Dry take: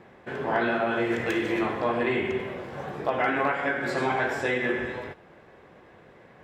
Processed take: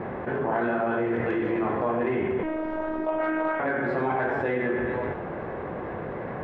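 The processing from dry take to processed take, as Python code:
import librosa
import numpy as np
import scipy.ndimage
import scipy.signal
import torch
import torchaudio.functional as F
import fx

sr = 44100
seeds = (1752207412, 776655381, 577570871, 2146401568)

y = scipy.signal.sosfilt(scipy.signal.butter(2, 1400.0, 'lowpass', fs=sr, output='sos'), x)
y = fx.cheby_harmonics(y, sr, harmonics=(3,), levels_db=(-23,), full_scale_db=-12.5)
y = fx.robotise(y, sr, hz=314.0, at=(2.43, 3.6))
y = fx.env_flatten(y, sr, amount_pct=70)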